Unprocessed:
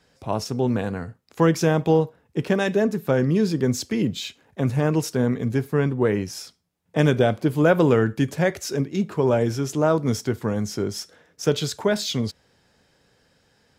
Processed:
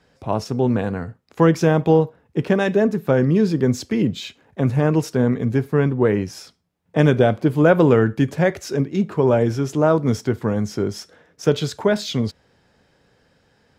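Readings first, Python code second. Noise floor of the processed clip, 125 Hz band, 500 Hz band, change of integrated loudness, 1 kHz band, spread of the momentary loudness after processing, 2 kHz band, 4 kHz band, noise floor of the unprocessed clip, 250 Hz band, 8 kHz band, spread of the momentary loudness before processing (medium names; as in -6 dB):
-61 dBFS, +3.5 dB, +3.5 dB, +3.5 dB, +3.0 dB, 10 LU, +2.0 dB, -1.0 dB, -64 dBFS, +3.5 dB, -3.5 dB, 11 LU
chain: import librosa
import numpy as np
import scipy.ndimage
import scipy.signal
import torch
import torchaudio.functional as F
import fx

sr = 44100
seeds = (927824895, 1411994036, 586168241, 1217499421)

y = fx.high_shelf(x, sr, hz=3900.0, db=-9.0)
y = y * librosa.db_to_amplitude(3.5)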